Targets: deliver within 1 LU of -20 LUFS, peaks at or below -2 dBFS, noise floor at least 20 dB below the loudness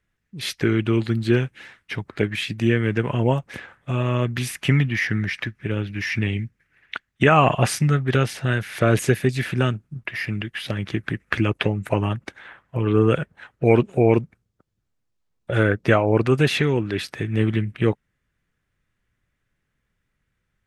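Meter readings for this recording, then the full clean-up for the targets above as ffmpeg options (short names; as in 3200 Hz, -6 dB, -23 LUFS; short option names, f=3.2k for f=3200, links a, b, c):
loudness -22.0 LUFS; peak -2.0 dBFS; loudness target -20.0 LUFS
-> -af "volume=2dB,alimiter=limit=-2dB:level=0:latency=1"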